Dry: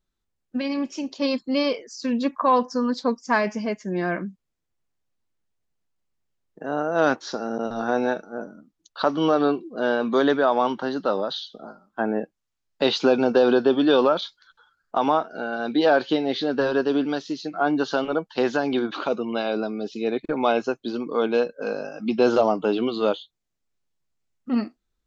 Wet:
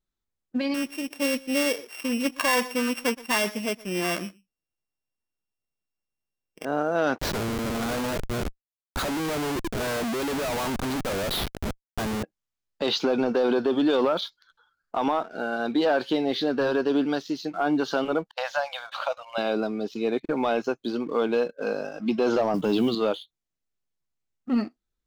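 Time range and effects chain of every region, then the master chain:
0:00.74–0:06.65: samples sorted by size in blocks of 16 samples + low-shelf EQ 230 Hz −6.5 dB + single-tap delay 121 ms −19.5 dB
0:07.18–0:12.23: shaped tremolo saw down 6.3 Hz, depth 60% + comparator with hysteresis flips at −38 dBFS
0:18.31–0:19.38: downward expander −33 dBFS + linear-phase brick-wall high-pass 510 Hz
0:22.54–0:22.95: bass and treble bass +11 dB, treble +13 dB + floating-point word with a short mantissa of 4 bits
whole clip: leveller curve on the samples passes 1; brickwall limiter −11.5 dBFS; level −4 dB

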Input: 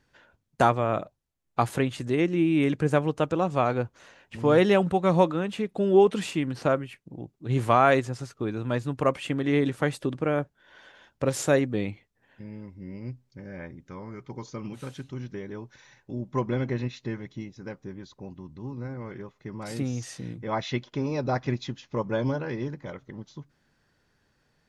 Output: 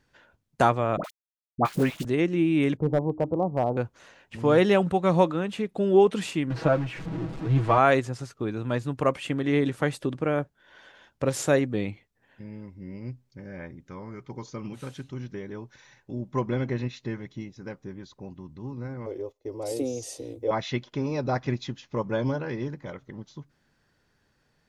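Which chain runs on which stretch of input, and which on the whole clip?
0:00.97–0:02.05: low shelf with overshoot 110 Hz −13.5 dB, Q 3 + centre clipping without the shift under −35.5 dBFS + all-pass dispersion highs, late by 70 ms, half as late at 970 Hz
0:02.77–0:03.77: Butterworth low-pass 970 Hz 48 dB per octave + hum removal 102.5 Hz, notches 3 + hard clipping −15.5 dBFS
0:06.50–0:07.78: converter with a step at zero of −30.5 dBFS + head-to-tape spacing loss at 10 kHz 23 dB + comb filter 6.2 ms, depth 68%
0:19.06–0:20.51: noise gate −53 dBFS, range −13 dB + drawn EQ curve 100 Hz 0 dB, 180 Hz −30 dB, 260 Hz 0 dB, 500 Hz +12 dB, 1,600 Hz −15 dB, 2,700 Hz −4 dB, 12,000 Hz +8 dB
whole clip: no processing

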